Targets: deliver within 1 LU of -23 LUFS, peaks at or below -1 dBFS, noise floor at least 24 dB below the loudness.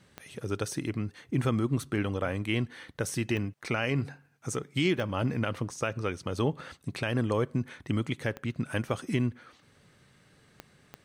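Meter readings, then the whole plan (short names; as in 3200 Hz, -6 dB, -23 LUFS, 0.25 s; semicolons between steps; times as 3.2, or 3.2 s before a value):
clicks 6; loudness -31.5 LUFS; peak -16.0 dBFS; loudness target -23.0 LUFS
-> de-click; gain +8.5 dB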